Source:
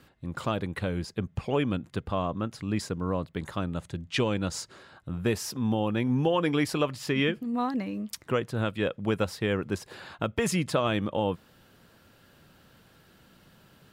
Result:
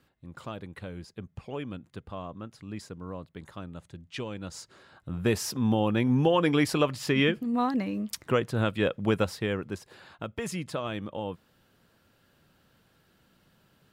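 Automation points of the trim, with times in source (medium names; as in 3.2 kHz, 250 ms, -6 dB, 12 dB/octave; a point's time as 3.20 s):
4.38 s -9.5 dB
5.35 s +2 dB
9.15 s +2 dB
9.90 s -7 dB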